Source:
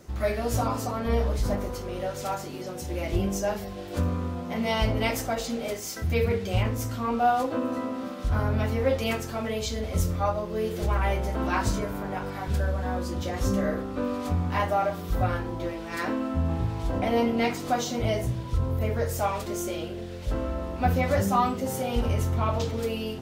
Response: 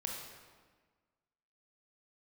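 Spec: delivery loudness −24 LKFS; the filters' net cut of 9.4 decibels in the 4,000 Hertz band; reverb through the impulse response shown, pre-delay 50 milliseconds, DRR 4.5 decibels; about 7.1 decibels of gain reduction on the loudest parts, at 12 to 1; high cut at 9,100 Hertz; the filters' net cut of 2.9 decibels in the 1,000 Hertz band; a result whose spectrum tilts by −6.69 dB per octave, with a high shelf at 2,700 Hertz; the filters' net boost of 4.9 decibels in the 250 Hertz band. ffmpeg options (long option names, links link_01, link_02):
-filter_complex "[0:a]lowpass=9100,equalizer=frequency=250:width_type=o:gain=6,equalizer=frequency=1000:width_type=o:gain=-3.5,highshelf=frequency=2700:gain=-6,equalizer=frequency=4000:width_type=o:gain=-8,acompressor=threshold=-25dB:ratio=12,asplit=2[link_01][link_02];[1:a]atrim=start_sample=2205,adelay=50[link_03];[link_02][link_03]afir=irnorm=-1:irlink=0,volume=-5.5dB[link_04];[link_01][link_04]amix=inputs=2:normalize=0,volume=5.5dB"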